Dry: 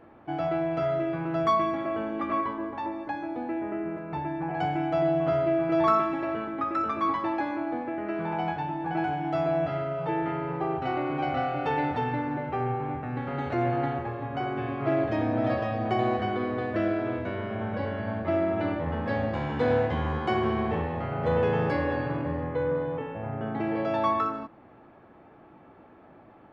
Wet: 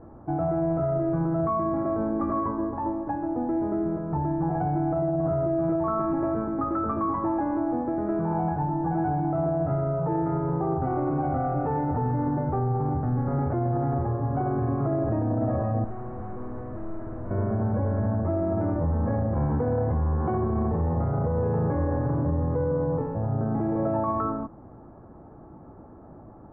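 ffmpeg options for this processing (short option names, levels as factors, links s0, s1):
-filter_complex "[0:a]asettb=1/sr,asplit=3[s0][s1][s2];[s0]atrim=end=15.844[s3];[s1]atrim=start=15.84:end=17.31,asetpts=PTS-STARTPTS,afade=t=in:d=0.004:c=qsin,afade=t=out:st=1.466:d=0.004:c=qsin,aeval=exprs='(tanh(112*val(0)+0.2)-tanh(0.2))/112':c=same[s4];[s2]atrim=start=17.306[s5];[s3][s4]acrossfade=d=0.004:c1=hsin:c2=qsin[s6];[s6][s5]acrossfade=d=0.004:c1=qsin:c2=hsin,lowpass=f=1300:w=0.5412,lowpass=f=1300:w=1.3066,aemphasis=mode=reproduction:type=bsi,alimiter=limit=0.0891:level=0:latency=1:release=22,volume=1.33"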